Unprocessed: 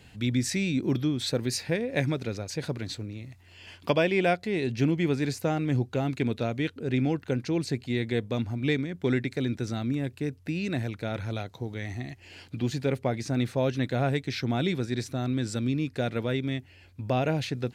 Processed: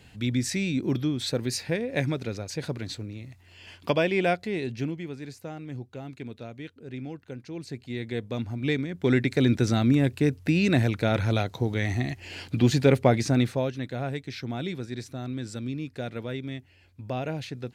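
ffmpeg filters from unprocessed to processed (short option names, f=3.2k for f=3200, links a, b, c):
-af "volume=19dB,afade=t=out:st=4.41:d=0.65:silence=0.281838,afade=t=in:st=7.47:d=1.48:silence=0.251189,afade=t=in:st=8.95:d=0.58:silence=0.446684,afade=t=out:st=13.14:d=0.58:silence=0.223872"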